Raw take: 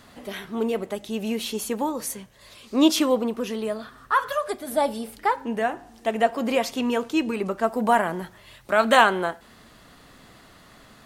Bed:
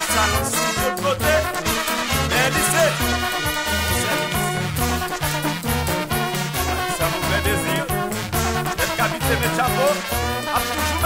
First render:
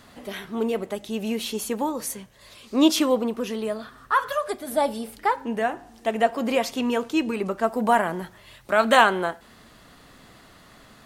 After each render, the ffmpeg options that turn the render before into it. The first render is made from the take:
ffmpeg -i in.wav -af anull out.wav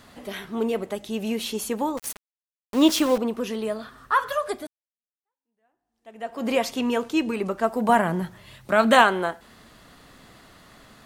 ffmpeg -i in.wav -filter_complex "[0:a]asettb=1/sr,asplit=3[link_01][link_02][link_03];[link_01]atrim=end=1.974[link_04];[link_02]atrim=start=1.97:end=3.18,asetpts=PTS-STARTPTS,afade=type=in:duration=0.004:curve=qsin,afade=type=out:start_time=1.206:duration=0.004:curve=qsin,aeval=exprs='val(0)*gte(abs(val(0)),0.0376)':channel_layout=same[link_05];[link_03]atrim=start=3.176[link_06];[link_04][link_05]acrossfade=duration=0.004:curve1=hsin:curve2=qsin[link_07];[link_07][link_06]acrossfade=duration=0.004:curve1=qsin:curve2=hsin,asettb=1/sr,asplit=3[link_08][link_09][link_10];[link_08]atrim=end=7.894[link_11];[link_09]atrim=start=7.89:end=9.02,asetpts=PTS-STARTPTS,afade=type=in:duration=0.004:curve=qsin,afade=type=out:start_time=1.126:duration=0.004:curve=qsin,equalizer=frequency=150:width_type=o:width=1.3:gain=9[link_12];[link_10]atrim=start=9.016[link_13];[link_11][link_12]acrossfade=duration=0.004:curve1=hsin:curve2=qsin[link_14];[link_14][link_13]acrossfade=duration=0.004:curve1=qsin:curve2=hsin,asplit=2[link_15][link_16];[link_15]atrim=end=4.67,asetpts=PTS-STARTPTS,afade=type=out:start_time=4.666:duration=0.004:curve=hsin[link_17];[link_16]atrim=start=4.67,asetpts=PTS-STARTPTS,afade=type=in:duration=1.8:curve=exp[link_18];[link_17][link_18]concat=n=2:v=0:a=1" out.wav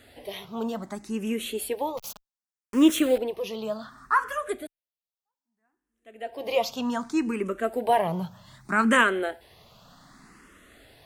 ffmpeg -i in.wav -filter_complex "[0:a]asplit=2[link_01][link_02];[link_02]afreqshift=0.65[link_03];[link_01][link_03]amix=inputs=2:normalize=1" out.wav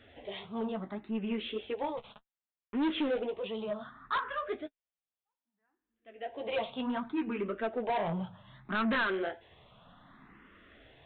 ffmpeg -i in.wav -af "flanger=delay=8.9:depth=7.1:regen=-29:speed=1.7:shape=sinusoidal,aresample=8000,asoftclip=type=tanh:threshold=-26.5dB,aresample=44100" out.wav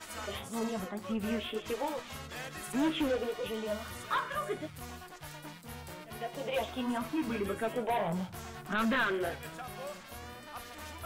ffmpeg -i in.wav -i bed.wav -filter_complex "[1:a]volume=-24dB[link_01];[0:a][link_01]amix=inputs=2:normalize=0" out.wav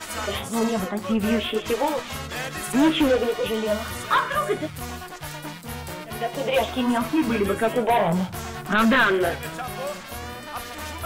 ffmpeg -i in.wav -af "volume=11.5dB" out.wav

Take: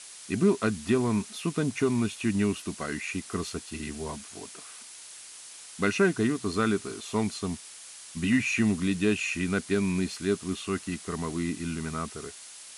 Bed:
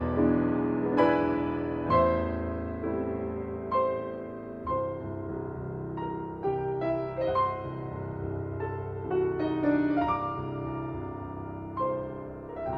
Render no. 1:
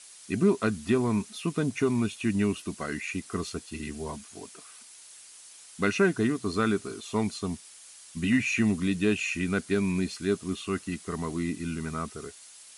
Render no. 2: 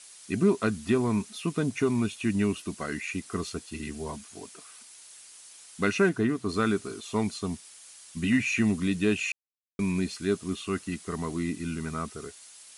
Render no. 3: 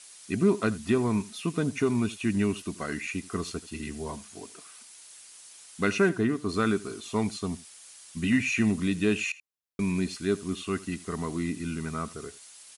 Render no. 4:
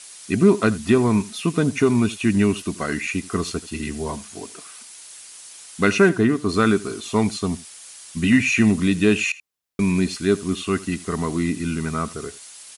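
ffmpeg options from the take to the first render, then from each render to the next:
ffmpeg -i in.wav -af "afftdn=noise_reduction=6:noise_floor=-46" out.wav
ffmpeg -i in.wav -filter_complex "[0:a]asettb=1/sr,asplit=3[link_01][link_02][link_03];[link_01]atrim=end=6.094[link_04];[link_02]atrim=start=6.09:end=6.49,asetpts=PTS-STARTPTS,afade=type=in:duration=0.004:curve=qsin,afade=type=out:start_time=0.396:duration=0.004:curve=qsin,acrossover=split=3000[link_05][link_06];[link_06]acompressor=threshold=-51dB:ratio=4:attack=1:release=60[link_07];[link_05][link_07]amix=inputs=2:normalize=0[link_08];[link_03]atrim=start=6.486[link_09];[link_04][link_08]acrossfade=duration=0.004:curve1=hsin:curve2=qsin[link_10];[link_10][link_09]acrossfade=duration=0.004:curve1=qsin:curve2=hsin,asplit=3[link_11][link_12][link_13];[link_11]atrim=end=9.32,asetpts=PTS-STARTPTS,afade=type=out:start_time=9.316:duration=0.004:curve=hsin[link_14];[link_12]atrim=start=9.32:end=9.79,asetpts=PTS-STARTPTS,volume=0[link_15];[link_13]atrim=start=9.79,asetpts=PTS-STARTPTS,afade=type=in:duration=0.004:curve=hsin[link_16];[link_14][link_15][link_16]concat=n=3:v=0:a=1" out.wav
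ffmpeg -i in.wav -af "aecho=1:1:81:0.106" out.wav
ffmpeg -i in.wav -af "volume=8dB" out.wav

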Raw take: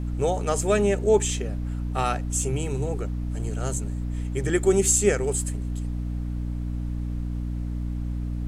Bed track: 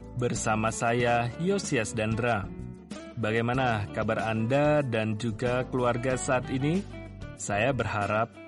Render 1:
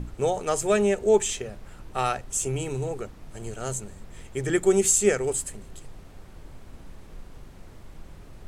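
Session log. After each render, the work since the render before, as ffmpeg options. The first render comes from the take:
ffmpeg -i in.wav -af "bandreject=frequency=60:width_type=h:width=6,bandreject=frequency=120:width_type=h:width=6,bandreject=frequency=180:width_type=h:width=6,bandreject=frequency=240:width_type=h:width=6,bandreject=frequency=300:width_type=h:width=6" out.wav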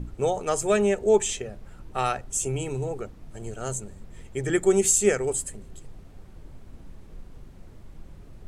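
ffmpeg -i in.wav -af "afftdn=noise_reduction=6:noise_floor=-47" out.wav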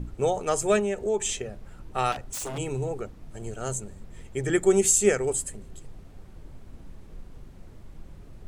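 ffmpeg -i in.wav -filter_complex "[0:a]asettb=1/sr,asplit=3[link_01][link_02][link_03];[link_01]atrim=end=0.794[link_04];[link_02]atrim=start=0.79:end=1.25,asetpts=PTS-STARTPTS,afade=type=in:duration=0.004:curve=qsin,afade=type=out:start_time=0.456:duration=0.004:curve=qsin,acompressor=threshold=-27dB:ratio=2:attack=3.2:release=140:knee=1:detection=peak[link_05];[link_03]atrim=start=1.246[link_06];[link_04][link_05]acrossfade=duration=0.004:curve1=hsin:curve2=qsin[link_07];[link_07][link_06]acrossfade=duration=0.004:curve1=qsin:curve2=hsin,asettb=1/sr,asplit=3[link_08][link_09][link_10];[link_08]atrim=end=2.124[link_11];[link_09]atrim=start=2.12:end=2.58,asetpts=PTS-STARTPTS,afade=type=in:duration=0.004:curve=qsin,afade=type=out:start_time=0.456:duration=0.004:curve=qsin,aeval=exprs='0.0376*(abs(mod(val(0)/0.0376+3,4)-2)-1)':channel_layout=same[link_12];[link_10]atrim=start=2.576[link_13];[link_11][link_12]acrossfade=duration=0.004:curve1=hsin:curve2=qsin[link_14];[link_14][link_13]acrossfade=duration=0.004:curve1=qsin:curve2=hsin" out.wav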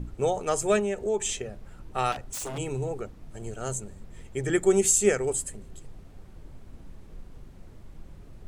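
ffmpeg -i in.wav -af "volume=-1dB" out.wav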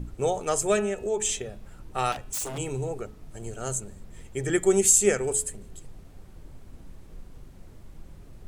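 ffmpeg -i in.wav -af "highshelf=frequency=6500:gain=6,bandreject=frequency=213.6:width_type=h:width=4,bandreject=frequency=427.2:width_type=h:width=4,bandreject=frequency=640.8:width_type=h:width=4,bandreject=frequency=854.4:width_type=h:width=4,bandreject=frequency=1068:width_type=h:width=4,bandreject=frequency=1281.6:width_type=h:width=4,bandreject=frequency=1495.2:width_type=h:width=4,bandreject=frequency=1708.8:width_type=h:width=4,bandreject=frequency=1922.4:width_type=h:width=4,bandreject=frequency=2136:width_type=h:width=4,bandreject=frequency=2349.6:width_type=h:width=4,bandreject=frequency=2563.2:width_type=h:width=4,bandreject=frequency=2776.8:width_type=h:width=4,bandreject=frequency=2990.4:width_type=h:width=4,bandreject=frequency=3204:width_type=h:width=4,bandreject=frequency=3417.6:width_type=h:width=4,bandreject=frequency=3631.2:width_type=h:width=4,bandreject=frequency=3844.8:width_type=h:width=4" out.wav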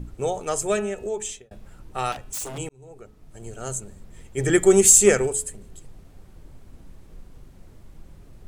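ffmpeg -i in.wav -filter_complex "[0:a]asplit=3[link_01][link_02][link_03];[link_01]afade=type=out:start_time=4.37:duration=0.02[link_04];[link_02]acontrast=64,afade=type=in:start_time=4.37:duration=0.02,afade=type=out:start_time=5.26:duration=0.02[link_05];[link_03]afade=type=in:start_time=5.26:duration=0.02[link_06];[link_04][link_05][link_06]amix=inputs=3:normalize=0,asplit=3[link_07][link_08][link_09];[link_07]atrim=end=1.51,asetpts=PTS-STARTPTS,afade=type=out:start_time=1.08:duration=0.43[link_10];[link_08]atrim=start=1.51:end=2.69,asetpts=PTS-STARTPTS,afade=type=in:duration=0.004:curve=hsin,afade=type=out:start_time=1.176:duration=0.004:curve=hsin[link_11];[link_09]atrim=start=2.69,asetpts=PTS-STARTPTS,afade=type=in:duration=0.9[link_12];[link_10][link_11][link_12]concat=n=3:v=0:a=1" out.wav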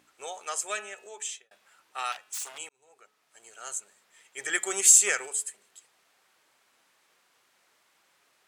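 ffmpeg -i in.wav -af "highpass=1300,highshelf=frequency=7700:gain=-6.5" out.wav

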